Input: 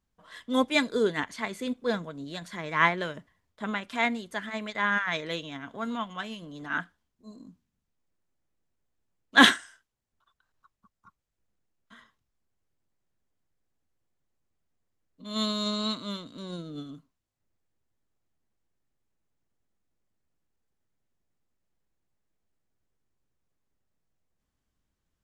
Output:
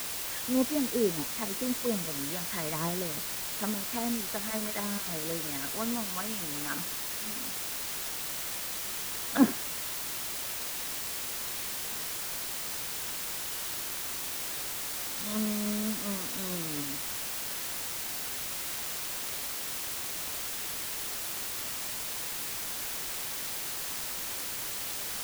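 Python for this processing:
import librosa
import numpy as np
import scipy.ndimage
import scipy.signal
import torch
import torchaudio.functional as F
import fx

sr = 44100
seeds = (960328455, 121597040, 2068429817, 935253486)

y = fx.env_lowpass_down(x, sr, base_hz=450.0, full_db=-28.0)
y = fx.quant_dither(y, sr, seeds[0], bits=6, dither='triangular')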